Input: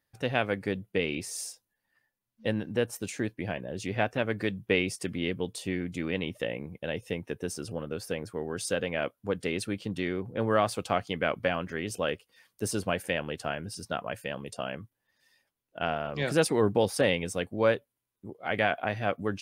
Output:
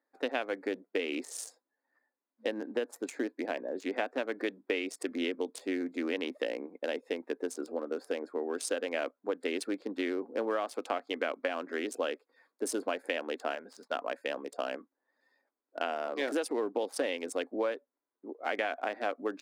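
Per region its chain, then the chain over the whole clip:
13.55–13.95 s: median filter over 3 samples + gate -52 dBFS, range -11 dB + peaking EQ 310 Hz -12.5 dB 0.67 oct
whole clip: local Wiener filter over 15 samples; elliptic high-pass 260 Hz, stop band 50 dB; compression 10:1, threshold -31 dBFS; trim +3 dB

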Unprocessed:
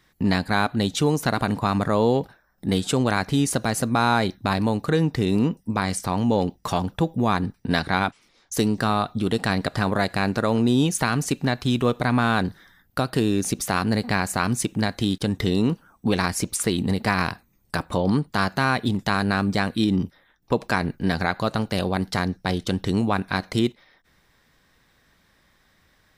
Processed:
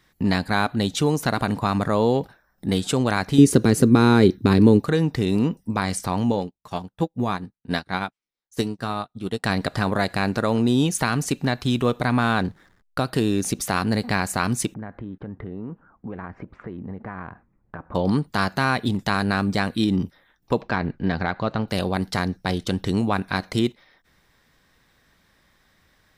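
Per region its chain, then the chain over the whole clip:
3.38–4.81 s: high-pass 55 Hz + resonant low shelf 520 Hz +7.5 dB, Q 3
6.32–9.44 s: doubling 16 ms -13 dB + upward expansion 2.5:1, over -40 dBFS
12.33–13.01 s: treble shelf 7.8 kHz -6 dB + hysteresis with a dead band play -47.5 dBFS
14.74–17.95 s: low-pass 1.7 kHz 24 dB/octave + compression 2.5:1, threshold -36 dBFS
20.61–21.68 s: hard clipper -11 dBFS + distance through air 210 m
whole clip: none

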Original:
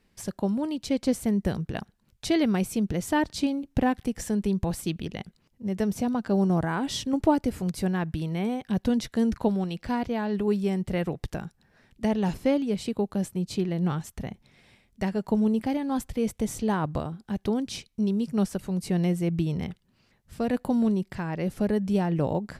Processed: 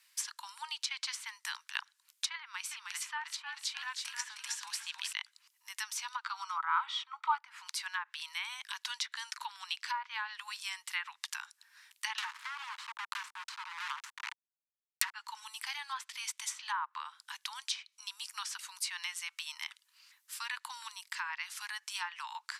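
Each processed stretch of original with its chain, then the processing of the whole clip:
2.40–5.13 s: compression, threshold -26 dBFS + frequency-shifting echo 311 ms, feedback 45%, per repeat -55 Hz, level -4 dB
6.24–7.39 s: dynamic bell 3.1 kHz, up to +7 dB, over -47 dBFS, Q 1.5 + comb 0.9 ms, depth 44% + small resonant body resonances 500/1300/3800 Hz, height 11 dB, ringing for 25 ms
12.18–15.14 s: tilt EQ +3 dB/octave + compression 3:1, threshold -40 dBFS + companded quantiser 2-bit
whole clip: steep high-pass 910 Hz 96 dB/octave; low-pass that closes with the level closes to 1.2 kHz, closed at -32.5 dBFS; tilt EQ +4 dB/octave

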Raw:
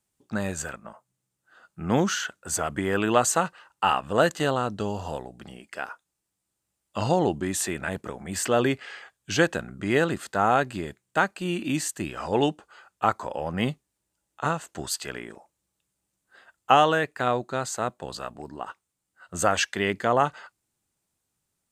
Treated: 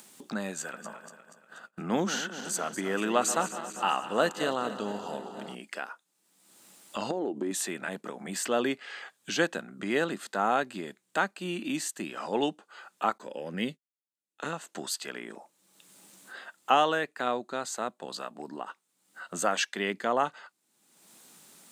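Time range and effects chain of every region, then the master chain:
0.61–5.55 s: backward echo that repeats 120 ms, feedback 73%, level -12.5 dB + expander -47 dBFS
7.10–7.51 s: FFT filter 170 Hz 0 dB, 330 Hz +13 dB, 1.8 kHz -2 dB + compression 8:1, threshold -22 dBFS
13.18–14.53 s: expander -37 dBFS + high-order bell 910 Hz -10.5 dB 1.2 oct
whole clip: Chebyshev high-pass 200 Hz, order 3; peaking EQ 3.8 kHz +3 dB 0.43 oct; upward compressor, threshold -27 dBFS; trim -4.5 dB

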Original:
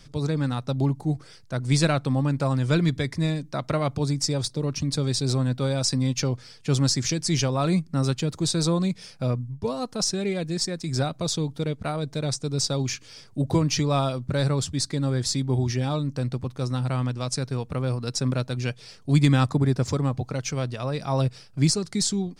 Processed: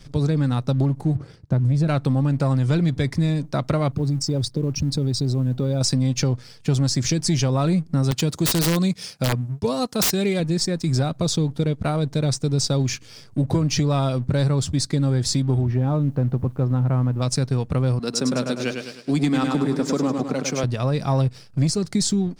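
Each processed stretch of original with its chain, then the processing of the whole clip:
1.15–1.88 s: high-pass 83 Hz 6 dB/octave + tilt EQ -3.5 dB/octave + compression 4:1, threshold -18 dBFS
3.92–5.81 s: resonances exaggerated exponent 1.5 + compression 4:1, threshold -26 dBFS + companded quantiser 8-bit
8.11–10.40 s: high-pass 120 Hz 6 dB/octave + treble shelf 2.5 kHz +7.5 dB + integer overflow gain 15.5 dB
15.61–17.22 s: low-pass 1.4 kHz + word length cut 12-bit, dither triangular
17.99–20.64 s: high-pass 200 Hz 24 dB/octave + feedback delay 103 ms, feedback 51%, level -6 dB
whole clip: bass shelf 400 Hz +6 dB; waveshaping leveller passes 1; compression, threshold -17 dBFS

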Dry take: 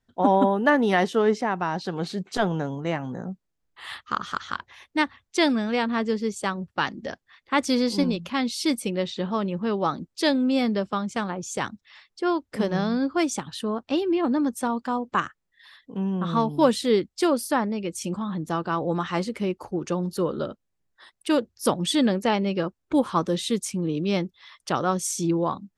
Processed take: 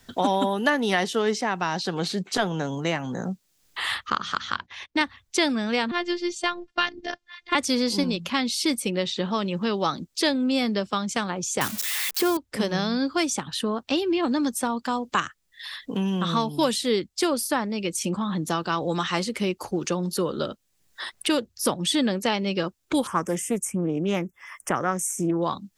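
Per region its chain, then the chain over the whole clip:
4.10–5.01 s: hum notches 60/120/180/240/300 Hz + gate -53 dBFS, range -16 dB + distance through air 110 m
5.91–7.55 s: low-pass 4.8 kHz + dynamic bell 3 kHz, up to +5 dB, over -39 dBFS, Q 0.74 + robot voice 350 Hz
11.61–12.37 s: zero-crossing glitches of -22 dBFS + bass shelf 420 Hz +7 dB
23.07–25.42 s: Butterworth band-stop 4 kHz, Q 0.74 + loudspeaker Doppler distortion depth 0.17 ms
whole clip: treble shelf 2.2 kHz +9 dB; three bands compressed up and down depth 70%; trim -2 dB

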